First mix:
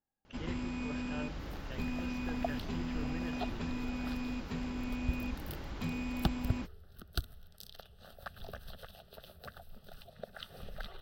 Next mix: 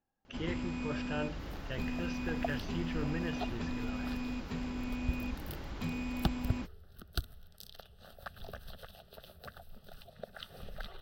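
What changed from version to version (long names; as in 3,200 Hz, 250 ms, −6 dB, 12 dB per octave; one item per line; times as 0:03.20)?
speech +7.0 dB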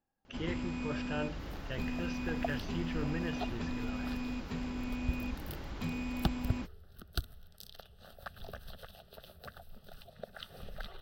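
nothing changed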